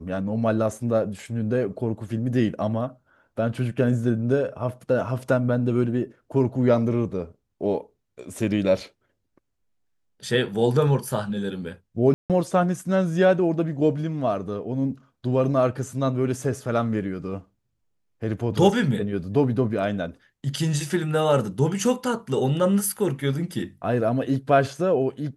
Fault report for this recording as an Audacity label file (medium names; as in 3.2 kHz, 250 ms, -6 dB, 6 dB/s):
12.140000	12.300000	dropout 157 ms